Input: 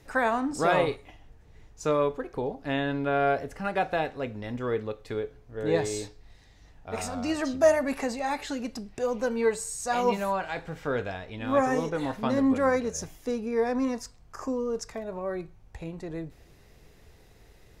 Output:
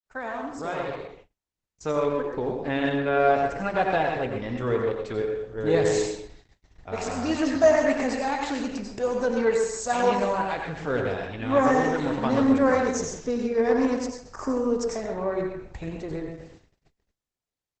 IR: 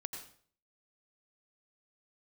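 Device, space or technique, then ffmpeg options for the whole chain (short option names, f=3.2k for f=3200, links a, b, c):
speakerphone in a meeting room: -filter_complex "[1:a]atrim=start_sample=2205[a];[0:a][a]afir=irnorm=-1:irlink=0,asplit=2[b][c];[c]adelay=130,highpass=300,lowpass=3.4k,asoftclip=type=hard:threshold=-21.5dB,volume=-8dB[d];[b][d]amix=inputs=2:normalize=0,dynaudnorm=f=750:g=5:m=14dB,agate=range=-40dB:threshold=-42dB:ratio=16:detection=peak,volume=-5.5dB" -ar 48000 -c:a libopus -b:a 12k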